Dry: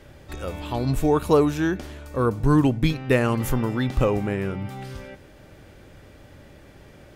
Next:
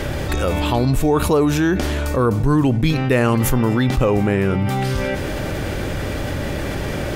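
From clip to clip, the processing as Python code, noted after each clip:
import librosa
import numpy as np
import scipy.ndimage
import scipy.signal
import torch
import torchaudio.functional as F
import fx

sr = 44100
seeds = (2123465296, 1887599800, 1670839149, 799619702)

y = fx.env_flatten(x, sr, amount_pct=70)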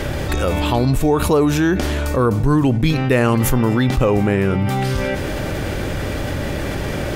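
y = fx.end_taper(x, sr, db_per_s=120.0)
y = F.gain(torch.from_numpy(y), 1.0).numpy()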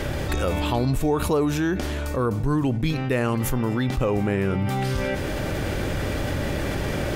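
y = fx.rider(x, sr, range_db=3, speed_s=2.0)
y = F.gain(torch.from_numpy(y), -6.0).numpy()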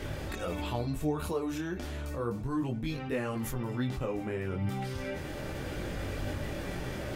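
y = fx.detune_double(x, sr, cents=11)
y = F.gain(torch.from_numpy(y), -7.0).numpy()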